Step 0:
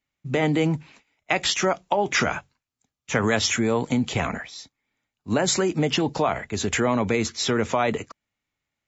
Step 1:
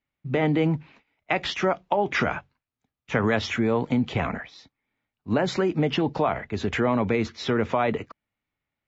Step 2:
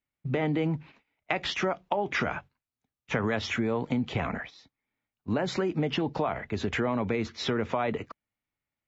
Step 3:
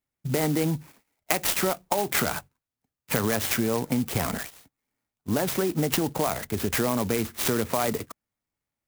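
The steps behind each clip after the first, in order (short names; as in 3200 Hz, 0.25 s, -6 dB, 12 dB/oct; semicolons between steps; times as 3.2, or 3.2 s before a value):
air absorption 240 m
gate -42 dBFS, range -7 dB; compressor 2:1, threshold -31 dBFS, peak gain reduction 7.5 dB; gain +1.5 dB
dynamic EQ 3400 Hz, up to +6 dB, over -48 dBFS, Q 1.2; clock jitter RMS 0.083 ms; gain +2.5 dB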